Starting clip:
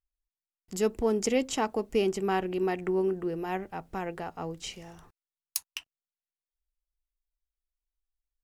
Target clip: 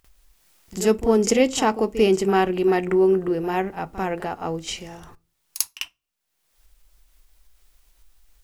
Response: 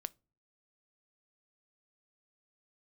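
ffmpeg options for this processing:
-filter_complex "[0:a]acompressor=mode=upward:threshold=-45dB:ratio=2.5,asplit=2[link_01][link_02];[1:a]atrim=start_sample=2205,adelay=45[link_03];[link_02][link_03]afir=irnorm=-1:irlink=0,volume=16dB[link_04];[link_01][link_04]amix=inputs=2:normalize=0,volume=-5dB"

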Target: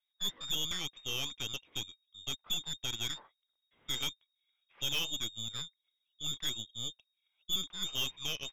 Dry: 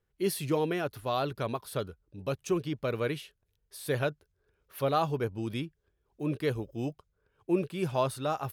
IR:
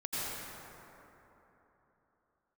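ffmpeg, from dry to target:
-af "lowpass=frequency=3200:width_type=q:width=0.5098,lowpass=frequency=3200:width_type=q:width=0.6013,lowpass=frequency=3200:width_type=q:width=0.9,lowpass=frequency=3200:width_type=q:width=2.563,afreqshift=-3800,aeval=exprs='0.2*(cos(1*acos(clip(val(0)/0.2,-1,1)))-cos(1*PI/2))+0.0316*(cos(8*acos(clip(val(0)/0.2,-1,1)))-cos(8*PI/2))':channel_layout=same,volume=-8dB"

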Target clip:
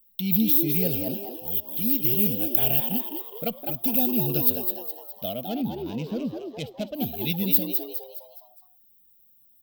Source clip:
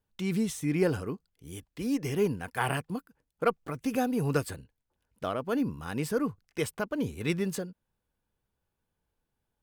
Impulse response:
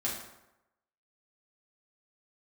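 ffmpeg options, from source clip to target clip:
-filter_complex "[0:a]firequalizer=gain_entry='entry(110,0);entry(220,7);entry(370,-11);entry(650,5);entry(1000,-22);entry(1700,-12);entry(3600,-8);entry(6600,-29);entry(9800,-26);entry(15000,13)':delay=0.05:min_phase=1,asettb=1/sr,asplit=3[link_01][link_02][link_03];[link_01]atrim=end=5.484[link_04];[link_02]atrim=start=5.48:end=6.95,asetpts=PTS-STARTPTS,afade=type=in:duration=0.004:curve=qsin,afade=type=out:start_time=1.466:duration=0.004:curve=qsin,adynamicsmooth=sensitivity=7.5:basefreq=1900[link_05];[link_03]atrim=start=6.946[link_06];[link_04][link_05]acrossfade=duration=0.004:curve1=hsin:curve2=qsin[link_07];[link_07][link_06]acrossfade=duration=0.004:curve1=qsin:curve2=hsin,aexciter=amount=11:drive=5.4:freq=2700,asplit=6[link_08][link_09][link_10][link_11][link_12][link_13];[link_09]adelay=207,afreqshift=110,volume=-6dB[link_14];[link_10]adelay=414,afreqshift=220,volume=-12.9dB[link_15];[link_11]adelay=621,afreqshift=330,volume=-19.9dB[link_16];[link_12]adelay=828,afreqshift=440,volume=-26.8dB[link_17];[link_13]adelay=1035,afreqshift=550,volume=-33.7dB[link_18];[link_08][link_14][link_15][link_16][link_17][link_18]amix=inputs=6:normalize=0,asplit=2[link_19][link_20];[1:a]atrim=start_sample=2205[link_21];[link_20][link_21]afir=irnorm=-1:irlink=0,volume=-26.5dB[link_22];[link_19][link_22]amix=inputs=2:normalize=0,volume=-1.5dB"

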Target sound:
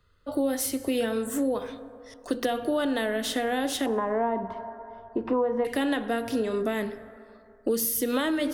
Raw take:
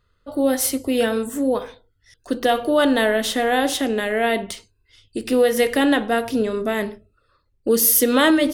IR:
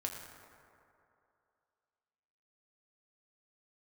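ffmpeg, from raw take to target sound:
-filter_complex "[0:a]asettb=1/sr,asplit=3[link_01][link_02][link_03];[link_01]atrim=end=3.864[link_04];[link_02]atrim=start=3.86:end=5.65,asetpts=PTS-STARTPTS,afade=type=in:duration=0.004:curve=qsin,afade=type=out:start_time=1.786:duration=0.004:curve=qsin,lowpass=frequency=1000:width_type=q:width=11[link_05];[link_03]atrim=start=5.646[link_06];[link_04][link_05]acrossfade=duration=0.004:curve1=hsin:curve2=qsin[link_07];[link_07][link_06]acrossfade=duration=0.004:curve1=qsin:curve2=hsin,asplit=2[link_08][link_09];[1:a]atrim=start_sample=2205[link_10];[link_09][link_10]afir=irnorm=-1:irlink=0,volume=-13.5dB[link_11];[link_08][link_11]amix=inputs=2:normalize=0,acrossover=split=90|320[link_12][link_13][link_14];[link_12]acompressor=threshold=-56dB:ratio=4[link_15];[link_13]acompressor=threshold=-31dB:ratio=4[link_16];[link_14]acompressor=threshold=-27dB:ratio=4[link_17];[link_15][link_16][link_17]amix=inputs=3:normalize=0,volume=-1dB"

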